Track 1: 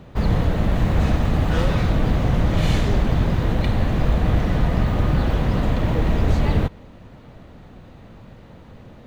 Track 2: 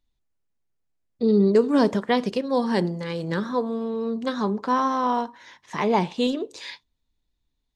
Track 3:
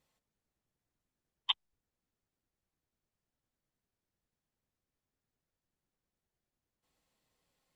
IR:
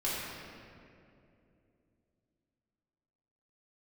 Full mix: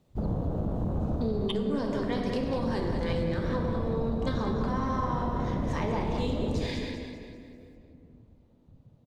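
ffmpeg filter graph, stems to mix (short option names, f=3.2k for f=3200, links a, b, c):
-filter_complex "[0:a]afwtdn=0.0501,equalizer=f=1.8k:t=o:w=1.6:g=-12,volume=-4.5dB,asplit=3[a][b][c];[b]volume=-22dB[d];[c]volume=-11dB[e];[1:a]aeval=exprs='if(lt(val(0),0),0.708*val(0),val(0))':c=same,alimiter=limit=-19.5dB:level=0:latency=1:release=286,volume=-3.5dB,asplit=3[f][g][h];[g]volume=-4dB[i];[h]volume=-4dB[j];[2:a]asoftclip=type=tanh:threshold=-17dB,volume=0dB,asplit=3[k][l][m];[l]volume=-16.5dB[n];[m]apad=whole_len=399624[o];[a][o]sidechaincompress=threshold=-55dB:ratio=8:attack=16:release=781[p];[3:a]atrim=start_sample=2205[q];[d][i][n]amix=inputs=3:normalize=0[r];[r][q]afir=irnorm=-1:irlink=0[s];[e][j]amix=inputs=2:normalize=0,aecho=0:1:197|394|591|788|985|1182:1|0.45|0.202|0.0911|0.041|0.0185[t];[p][f][k][s][t]amix=inputs=5:normalize=0,lowshelf=f=100:g=-9.5,acompressor=threshold=-25dB:ratio=6"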